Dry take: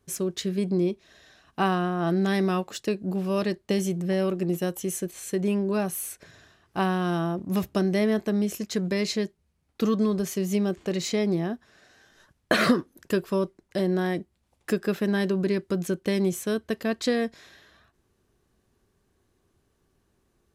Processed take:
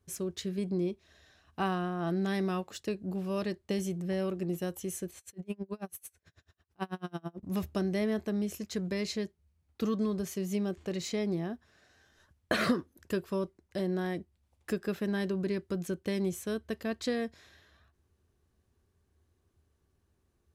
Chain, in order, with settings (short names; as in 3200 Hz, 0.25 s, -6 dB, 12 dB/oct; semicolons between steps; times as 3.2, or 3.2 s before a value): bell 78 Hz +14 dB 0.54 oct; 5.18–7.43 dB-linear tremolo 9.1 Hz, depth 35 dB; gain -7.5 dB